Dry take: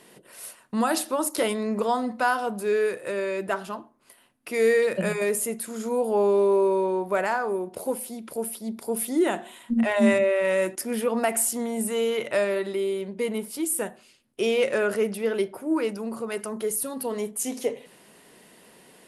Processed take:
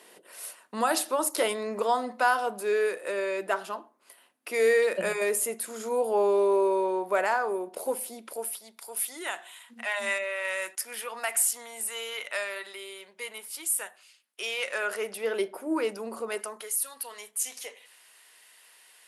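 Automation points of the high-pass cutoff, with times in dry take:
8.21 s 400 Hz
8.73 s 1.2 kHz
14.60 s 1.2 kHz
15.47 s 370 Hz
16.32 s 370 Hz
16.73 s 1.4 kHz

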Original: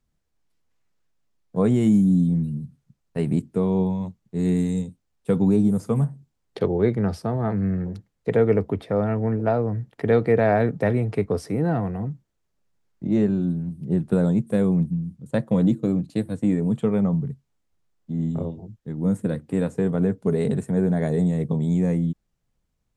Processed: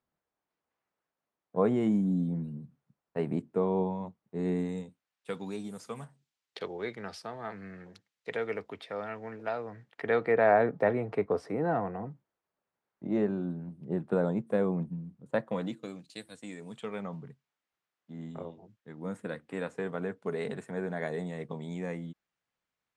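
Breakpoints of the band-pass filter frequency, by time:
band-pass filter, Q 0.74
4.63 s 870 Hz
5.38 s 3.3 kHz
9.50 s 3.3 kHz
10.64 s 950 Hz
15.28 s 950 Hz
16.03 s 4.5 kHz
16.55 s 4.5 kHz
17.29 s 1.8 kHz

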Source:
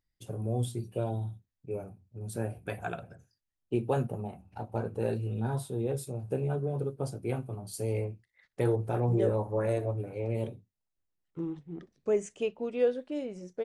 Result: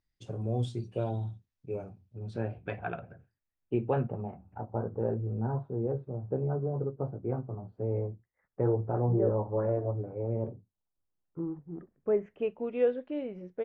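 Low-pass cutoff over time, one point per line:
low-pass 24 dB/octave
1.84 s 6.4 kHz
3.00 s 2.6 kHz
4.01 s 2.6 kHz
4.81 s 1.3 kHz
11.64 s 1.3 kHz
12.77 s 2.9 kHz

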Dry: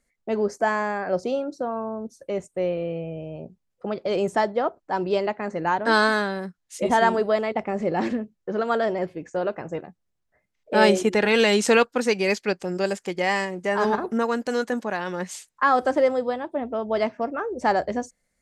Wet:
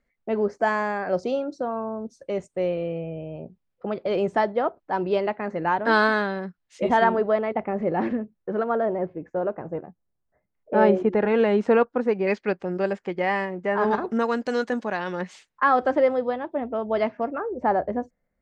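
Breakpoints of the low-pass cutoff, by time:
2.8 kHz
from 0.61 s 5.8 kHz
from 2.88 s 3.3 kHz
from 7.04 s 2 kHz
from 8.64 s 1.2 kHz
from 12.27 s 2.1 kHz
from 13.91 s 5 kHz
from 15.21 s 3.1 kHz
from 17.38 s 1.3 kHz

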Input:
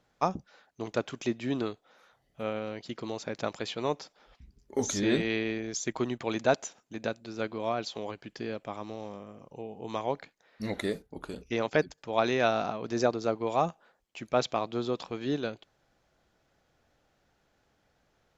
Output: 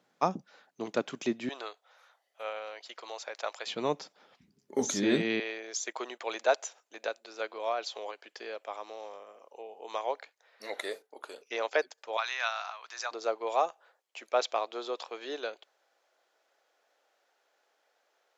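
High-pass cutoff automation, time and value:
high-pass 24 dB/octave
160 Hz
from 1.49 s 580 Hz
from 3.67 s 150 Hz
from 5.40 s 470 Hz
from 12.17 s 990 Hz
from 13.11 s 450 Hz

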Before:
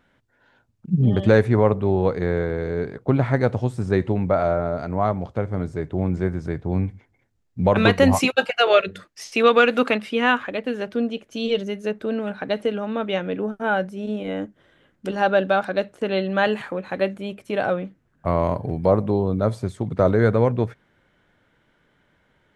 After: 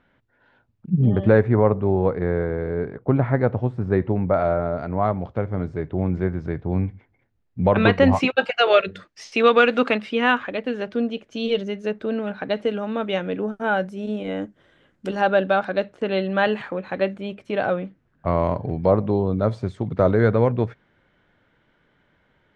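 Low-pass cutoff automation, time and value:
3.4 kHz
from 1.07 s 1.9 kHz
from 4.34 s 3.2 kHz
from 8.44 s 5.3 kHz
from 12.67 s 9.2 kHz
from 15.21 s 4.6 kHz

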